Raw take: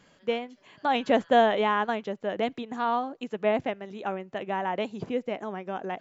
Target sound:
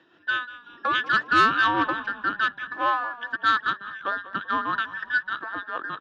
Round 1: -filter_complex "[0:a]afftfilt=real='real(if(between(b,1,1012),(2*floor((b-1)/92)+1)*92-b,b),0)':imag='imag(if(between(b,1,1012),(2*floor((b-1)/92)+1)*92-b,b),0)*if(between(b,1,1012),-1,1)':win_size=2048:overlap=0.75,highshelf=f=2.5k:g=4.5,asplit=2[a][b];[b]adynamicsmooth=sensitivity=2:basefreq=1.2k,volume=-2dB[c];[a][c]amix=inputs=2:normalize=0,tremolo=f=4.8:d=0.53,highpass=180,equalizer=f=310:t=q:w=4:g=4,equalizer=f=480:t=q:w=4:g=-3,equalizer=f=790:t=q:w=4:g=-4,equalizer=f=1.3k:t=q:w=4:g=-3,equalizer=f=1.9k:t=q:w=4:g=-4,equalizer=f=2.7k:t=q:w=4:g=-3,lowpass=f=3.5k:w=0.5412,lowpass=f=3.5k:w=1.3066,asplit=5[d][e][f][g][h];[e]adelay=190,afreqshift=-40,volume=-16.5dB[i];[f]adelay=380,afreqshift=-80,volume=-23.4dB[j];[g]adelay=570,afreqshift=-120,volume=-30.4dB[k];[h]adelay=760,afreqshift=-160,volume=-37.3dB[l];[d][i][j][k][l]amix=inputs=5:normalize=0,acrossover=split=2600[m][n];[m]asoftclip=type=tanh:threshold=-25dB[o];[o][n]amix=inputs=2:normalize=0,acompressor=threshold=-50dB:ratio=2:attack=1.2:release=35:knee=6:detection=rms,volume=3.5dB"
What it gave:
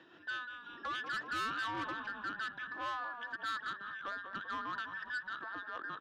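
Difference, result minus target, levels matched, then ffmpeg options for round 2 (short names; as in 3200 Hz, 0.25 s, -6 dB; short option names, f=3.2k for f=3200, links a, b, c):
compressor: peak gain reduction +15 dB; soft clip: distortion +8 dB
-filter_complex "[0:a]afftfilt=real='real(if(between(b,1,1012),(2*floor((b-1)/92)+1)*92-b,b),0)':imag='imag(if(between(b,1,1012),(2*floor((b-1)/92)+1)*92-b,b),0)*if(between(b,1,1012),-1,1)':win_size=2048:overlap=0.75,highshelf=f=2.5k:g=4.5,asplit=2[a][b];[b]adynamicsmooth=sensitivity=2:basefreq=1.2k,volume=-2dB[c];[a][c]amix=inputs=2:normalize=0,tremolo=f=4.8:d=0.53,highpass=180,equalizer=f=310:t=q:w=4:g=4,equalizer=f=480:t=q:w=4:g=-3,equalizer=f=790:t=q:w=4:g=-4,equalizer=f=1.3k:t=q:w=4:g=-3,equalizer=f=1.9k:t=q:w=4:g=-4,equalizer=f=2.7k:t=q:w=4:g=-3,lowpass=f=3.5k:w=0.5412,lowpass=f=3.5k:w=1.3066,asplit=5[d][e][f][g][h];[e]adelay=190,afreqshift=-40,volume=-16.5dB[i];[f]adelay=380,afreqshift=-80,volume=-23.4dB[j];[g]adelay=570,afreqshift=-120,volume=-30.4dB[k];[h]adelay=760,afreqshift=-160,volume=-37.3dB[l];[d][i][j][k][l]amix=inputs=5:normalize=0,acrossover=split=2600[m][n];[m]asoftclip=type=tanh:threshold=-16dB[o];[o][n]amix=inputs=2:normalize=0,volume=3.5dB"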